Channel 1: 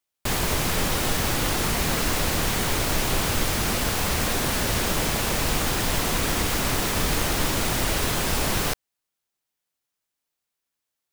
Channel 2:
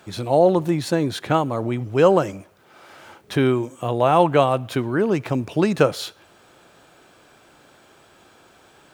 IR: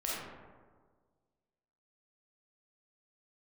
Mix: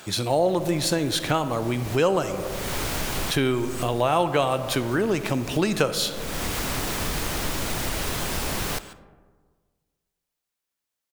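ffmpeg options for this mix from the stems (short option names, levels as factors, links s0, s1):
-filter_complex "[0:a]adelay=50,volume=0.794,asplit=2[s0][s1];[s1]volume=0.1[s2];[1:a]highshelf=f=2400:g=11,volume=1.19,asplit=3[s3][s4][s5];[s4]volume=0.188[s6];[s5]apad=whole_len=492843[s7];[s0][s7]sidechaincompress=threshold=0.0251:ratio=8:attack=6.3:release=366[s8];[2:a]atrim=start_sample=2205[s9];[s2][s6]amix=inputs=2:normalize=0[s10];[s10][s9]afir=irnorm=-1:irlink=0[s11];[s8][s3][s11]amix=inputs=3:normalize=0,acompressor=threshold=0.0562:ratio=2"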